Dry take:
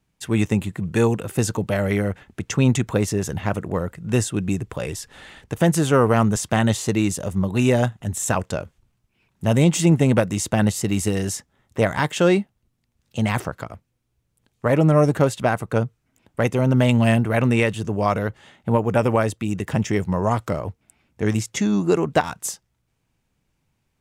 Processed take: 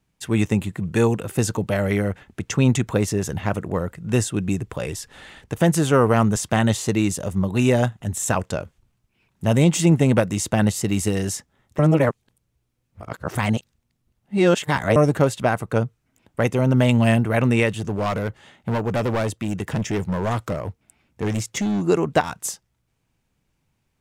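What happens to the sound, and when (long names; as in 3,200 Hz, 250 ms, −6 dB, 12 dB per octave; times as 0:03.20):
0:11.79–0:14.96: reverse
0:17.73–0:21.83: gain into a clipping stage and back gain 19 dB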